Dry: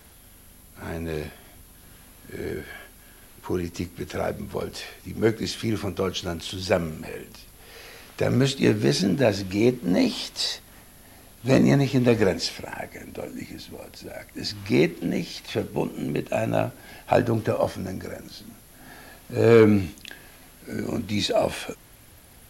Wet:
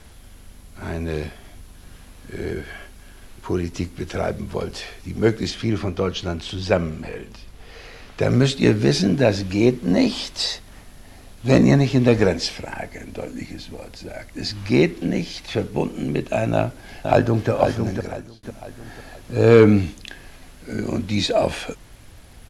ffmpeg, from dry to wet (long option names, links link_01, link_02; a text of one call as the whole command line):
ffmpeg -i in.wav -filter_complex "[0:a]asettb=1/sr,asplit=3[link_01][link_02][link_03];[link_01]atrim=end=5.504[link_04];[link_02]atrim=start=5.5:end=8.21,asetpts=PTS-STARTPTS,afade=type=in:duration=0.004:curve=qsin,afade=type=out:start_time=2.706:duration=0.004:curve=qsin,equalizer=frequency=11000:width=0.48:gain=-6.5[link_05];[link_03]atrim=start=8.206[link_06];[link_04][link_05]acrossfade=duration=0.004:curve1=hsin:curve2=qsin[link_07];[link_07][link_06]acrossfade=duration=0.004:curve1=qsin:curve2=hsin,asplit=2[link_08][link_09];[link_09]afade=type=in:start_time=16.54:duration=0.01,afade=type=out:start_time=17.5:duration=0.01,aecho=0:1:500|1000|1500|2000|2500:0.501187|0.200475|0.08019|0.032076|0.0128304[link_10];[link_08][link_10]amix=inputs=2:normalize=0,asplit=2[link_11][link_12];[link_11]atrim=end=18.43,asetpts=PTS-STARTPTS,afade=type=out:start_time=18.03:duration=0.4[link_13];[link_12]atrim=start=18.43,asetpts=PTS-STARTPTS,afade=type=in:duration=0.004:curve=hsin[link_14];[link_13][link_14]concat=n=2:v=0:a=1,lowpass=8700,lowshelf=frequency=61:gain=11,volume=3dB" out.wav